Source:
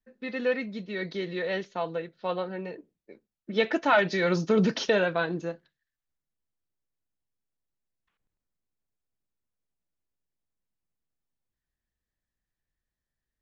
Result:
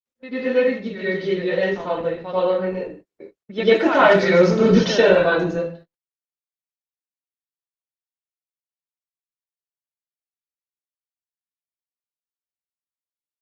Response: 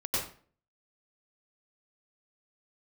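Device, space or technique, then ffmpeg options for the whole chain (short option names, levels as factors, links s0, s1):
speakerphone in a meeting room: -filter_complex "[1:a]atrim=start_sample=2205[s0];[0:a][s0]afir=irnorm=-1:irlink=0,asplit=2[s1][s2];[s2]adelay=80,highpass=300,lowpass=3400,asoftclip=type=hard:threshold=0.266,volume=0.158[s3];[s1][s3]amix=inputs=2:normalize=0,dynaudnorm=f=470:g=11:m=1.78,agate=range=0.00794:threshold=0.01:ratio=16:detection=peak" -ar 48000 -c:a libopus -b:a 20k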